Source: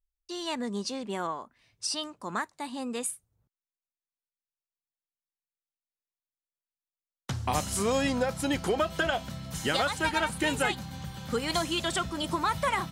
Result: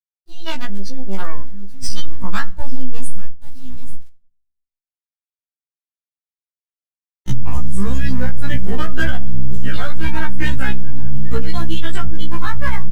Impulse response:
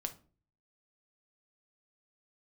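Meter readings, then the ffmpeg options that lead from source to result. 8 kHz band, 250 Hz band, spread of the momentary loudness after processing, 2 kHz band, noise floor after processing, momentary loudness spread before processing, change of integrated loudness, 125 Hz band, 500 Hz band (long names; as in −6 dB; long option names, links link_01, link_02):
−3.5 dB, +6.0 dB, 15 LU, +4.5 dB, below −85 dBFS, 10 LU, +3.5 dB, +14.5 dB, −2.5 dB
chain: -filter_complex "[0:a]aecho=1:1:832|1664:0.188|0.0396,acrusher=bits=5:dc=4:mix=0:aa=0.000001,flanger=delay=0.2:depth=3.1:regen=88:speed=0.38:shape=triangular,asubboost=boost=8.5:cutoff=160,asplit=2[link_01][link_02];[1:a]atrim=start_sample=2205,asetrate=28665,aresample=44100[link_03];[link_02][link_03]afir=irnorm=-1:irlink=0,volume=-5dB[link_04];[link_01][link_04]amix=inputs=2:normalize=0,acompressor=threshold=-17dB:ratio=6,afftdn=noise_reduction=14:noise_floor=-37,adynamicequalizer=threshold=0.00178:dfrequency=1700:dqfactor=3.5:tfrequency=1700:tqfactor=3.5:attack=5:release=100:ratio=0.375:range=3.5:mode=boostabove:tftype=bell,dynaudnorm=framelen=300:gausssize=13:maxgain=9.5dB,alimiter=level_in=12dB:limit=-1dB:release=50:level=0:latency=1,afftfilt=real='re*1.73*eq(mod(b,3),0)':imag='im*1.73*eq(mod(b,3),0)':win_size=2048:overlap=0.75,volume=-3.5dB"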